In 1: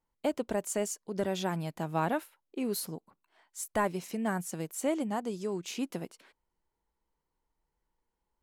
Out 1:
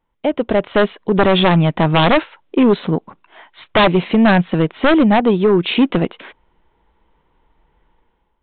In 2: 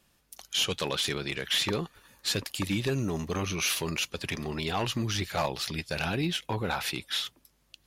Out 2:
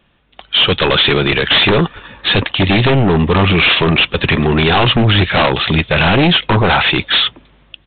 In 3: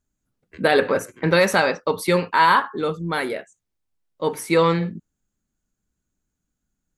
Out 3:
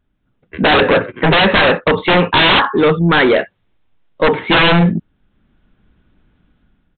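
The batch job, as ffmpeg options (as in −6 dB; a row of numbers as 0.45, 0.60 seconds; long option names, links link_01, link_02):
-af "dynaudnorm=framelen=230:gausssize=5:maxgain=12dB,aresample=8000,aeval=exprs='0.891*sin(PI/2*5.01*val(0)/0.891)':channel_layout=same,aresample=44100,volume=-6dB"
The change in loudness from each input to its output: +19.0, +18.0, +8.0 LU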